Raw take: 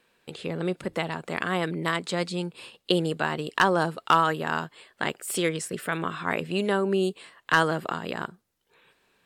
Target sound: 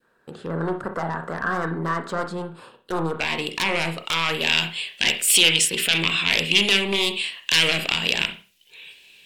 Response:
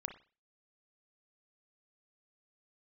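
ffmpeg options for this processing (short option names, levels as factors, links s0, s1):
-filter_complex "[0:a]alimiter=limit=0.188:level=0:latency=1:release=11,aeval=exprs='0.188*sin(PI/2*2.24*val(0)/0.188)':c=same,asetnsamples=n=441:p=0,asendcmd='3.2 highshelf g 7;4.41 highshelf g 13',highshelf=f=1900:t=q:w=3:g=-7[s0];[1:a]atrim=start_sample=2205[s1];[s0][s1]afir=irnorm=-1:irlink=0,adynamicequalizer=threshold=0.0316:dfrequency=1100:dqfactor=0.82:tfrequency=1100:tqfactor=0.82:attack=5:release=100:ratio=0.375:range=3:mode=boostabove:tftype=bell,volume=0.473"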